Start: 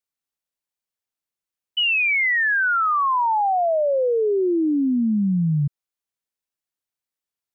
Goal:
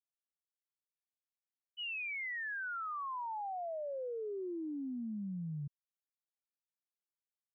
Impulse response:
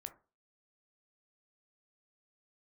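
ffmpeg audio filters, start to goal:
-af "agate=range=0.0224:threshold=0.447:ratio=3:detection=peak,volume=1.12"

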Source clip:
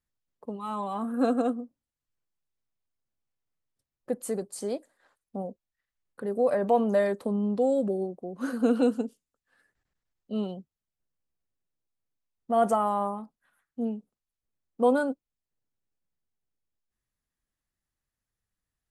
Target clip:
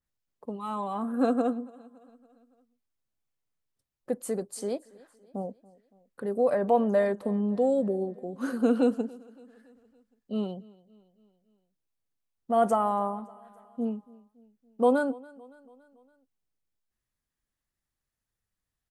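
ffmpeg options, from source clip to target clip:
-filter_complex "[0:a]asplit=2[s0][s1];[s1]aecho=0:1:282|564|846|1128:0.0708|0.0375|0.0199|0.0105[s2];[s0][s2]amix=inputs=2:normalize=0,adynamicequalizer=threshold=0.00562:dfrequency=2600:dqfactor=0.7:tfrequency=2600:tqfactor=0.7:attack=5:release=100:ratio=0.375:range=3:mode=cutabove:tftype=highshelf"

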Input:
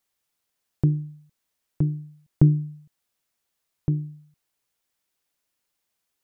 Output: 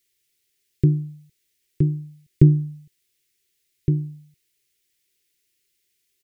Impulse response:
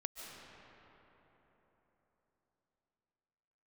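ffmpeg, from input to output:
-af "firequalizer=gain_entry='entry(130,0);entry(250,-7);entry(380,6);entry(680,-27);entry(2000,3)':delay=0.05:min_phase=1,volume=1.68"

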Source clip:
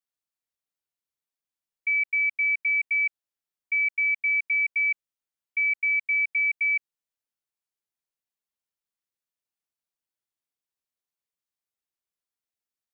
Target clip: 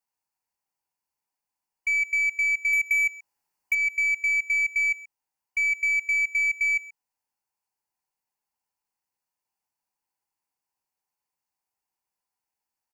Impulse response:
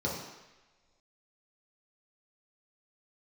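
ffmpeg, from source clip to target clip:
-filter_complex "[0:a]asettb=1/sr,asplit=3[s0][s1][s2];[s0]atrim=end=2.734[s3];[s1]atrim=start=2.73:end=3.75,asetpts=PTS-STARTPTS,afade=t=in:d=0.004:c=qsin,afade=t=out:st=1.016:d=0.004:c=qsin,acontrast=59[s4];[s2]atrim=start=3.746[s5];[s3][s4]acrossfade=d=0.004:c1=hsin:c2=qsin[s6];[s6][s5]acrossfade=d=0.004:c1=qsin:c2=hsin,superequalizer=9b=3.55:13b=0.355,acompressor=threshold=0.0891:ratio=5,aeval=exprs='0.158*(cos(1*acos(clip(val(0)/0.158,-1,1)))-cos(1*PI/2))+0.0141*(cos(5*acos(clip(val(0)/0.158,-1,1)))-cos(5*PI/2))+0.00282*(cos(6*acos(clip(val(0)/0.158,-1,1)))-cos(6*PI/2))':c=same,asplit=2[s7][s8];[s8]adelay=130,highpass=300,lowpass=3400,asoftclip=type=hard:threshold=0.0631,volume=0.141[s9];[s7][s9]amix=inputs=2:normalize=0"

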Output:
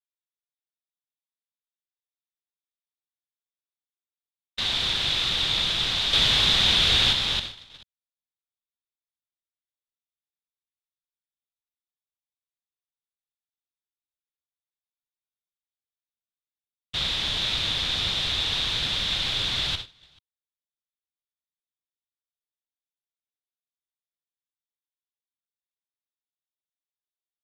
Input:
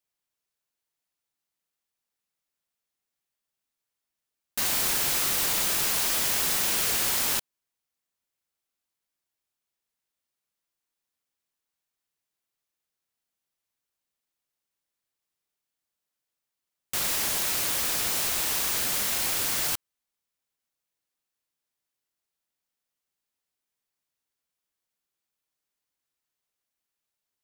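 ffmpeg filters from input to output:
-filter_complex "[0:a]acrossover=split=140[s0][s1];[s0]dynaudnorm=f=710:g=13:m=5.31[s2];[s2][s1]amix=inputs=2:normalize=0,lowpass=f=3600:t=q:w=7.6,aecho=1:1:63|433:0.224|0.355,asettb=1/sr,asplit=3[s3][s4][s5];[s3]atrim=end=6.134[s6];[s4]atrim=start=6.13:end=7.13,asetpts=PTS-STARTPTS,afade=t=in:d=0.004:c=qsin,afade=t=out:st=0.996:d=0.004:c=qsin,acontrast=29[s7];[s5]atrim=start=7.126[s8];[s6][s7]acrossfade=d=0.004:c1=hsin:c2=qsin[s9];[s9][s8]acrossfade=d=0.004:c1=qsin:c2=hsin,agate=range=0.0794:threshold=0.0355:ratio=16:detection=peak,volume=0.708"

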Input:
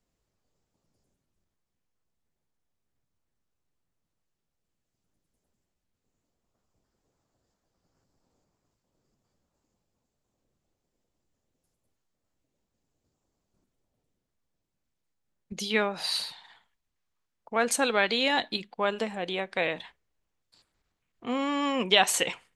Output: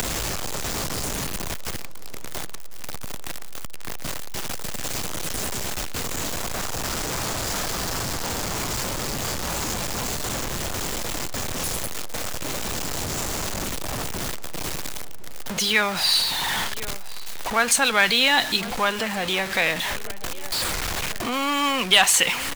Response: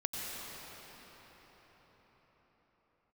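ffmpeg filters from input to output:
-filter_complex "[0:a]aeval=exprs='val(0)+0.5*0.0299*sgn(val(0))':c=same,acompressor=mode=upward:threshold=0.0355:ratio=2.5,lowshelf=f=140:g=5,asplit=2[s0][s1];[s1]adelay=1052,lowpass=f=3500:p=1,volume=0.1,asplit=2[s2][s3];[s3]adelay=1052,lowpass=f=3500:p=1,volume=0.53,asplit=2[s4][s5];[s5]adelay=1052,lowpass=f=3500:p=1,volume=0.53,asplit=2[s6][s7];[s7]adelay=1052,lowpass=f=3500:p=1,volume=0.53[s8];[s0][s2][s4][s6][s8]amix=inputs=5:normalize=0,acrossover=split=340|800[s9][s10][s11];[s9]alimiter=level_in=3.55:limit=0.0631:level=0:latency=1:release=472,volume=0.282[s12];[s10]acompressor=threshold=0.00631:ratio=6[s13];[s11]asoftclip=type=hard:threshold=0.178[s14];[s12][s13][s14]amix=inputs=3:normalize=0,volume=2.37"

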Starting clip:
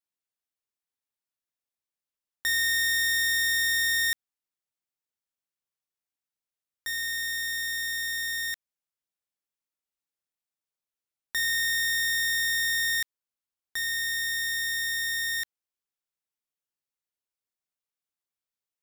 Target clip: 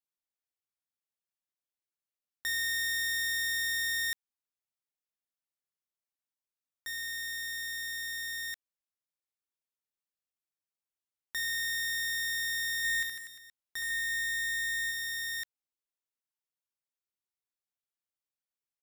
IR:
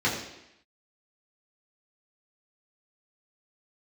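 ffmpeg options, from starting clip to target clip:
-filter_complex "[0:a]asplit=3[s0][s1][s2];[s0]afade=t=out:st=12.83:d=0.02[s3];[s1]aecho=1:1:70|150.5|243.1|349.5|472:0.631|0.398|0.251|0.158|0.1,afade=t=in:st=12.83:d=0.02,afade=t=out:st=14.9:d=0.02[s4];[s2]afade=t=in:st=14.9:d=0.02[s5];[s3][s4][s5]amix=inputs=3:normalize=0,volume=0.473"

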